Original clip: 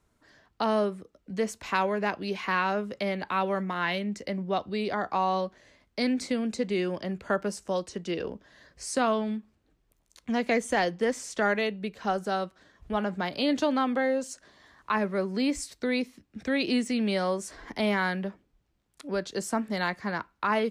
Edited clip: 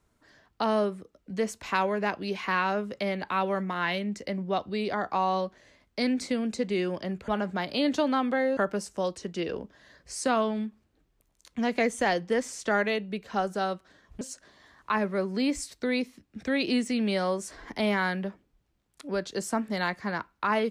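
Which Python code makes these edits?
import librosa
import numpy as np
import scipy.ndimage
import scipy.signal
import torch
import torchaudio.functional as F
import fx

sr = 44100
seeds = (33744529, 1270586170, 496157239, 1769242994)

y = fx.edit(x, sr, fx.move(start_s=12.92, length_s=1.29, to_s=7.28), tone=tone)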